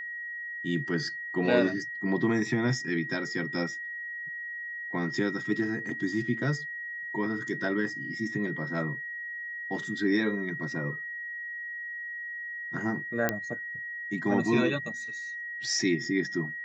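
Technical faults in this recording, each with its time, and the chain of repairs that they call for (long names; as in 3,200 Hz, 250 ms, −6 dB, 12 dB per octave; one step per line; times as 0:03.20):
whistle 1,900 Hz −35 dBFS
0:13.29: click −11 dBFS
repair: click removal
notch filter 1,900 Hz, Q 30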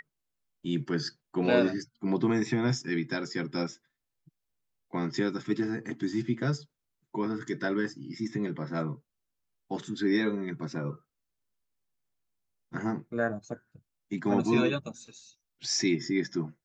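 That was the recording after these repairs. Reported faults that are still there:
none of them is left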